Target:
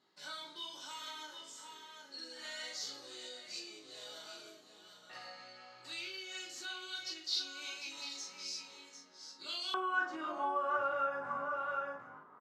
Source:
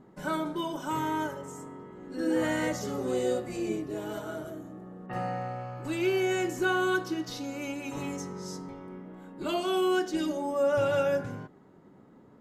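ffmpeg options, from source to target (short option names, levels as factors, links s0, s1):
-filter_complex "[0:a]aecho=1:1:749:0.316,flanger=delay=17.5:depth=3.7:speed=1,asplit=2[s0][s1];[s1]adelay=40,volume=0.562[s2];[s0][s2]amix=inputs=2:normalize=0,acompressor=threshold=0.0224:ratio=6,asetnsamples=n=441:p=0,asendcmd='9.74 bandpass f 1200',bandpass=f=4300:t=q:w=4.5:csg=0,volume=5.01"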